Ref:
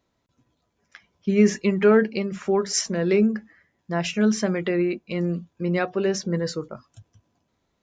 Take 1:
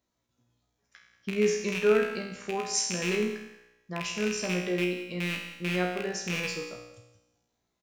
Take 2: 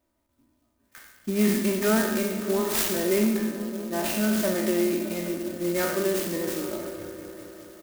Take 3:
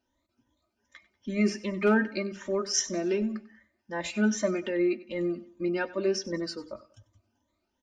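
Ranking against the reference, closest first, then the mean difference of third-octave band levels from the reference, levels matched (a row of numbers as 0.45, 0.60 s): 3, 1, 2; 4.0, 10.0, 15.0 dB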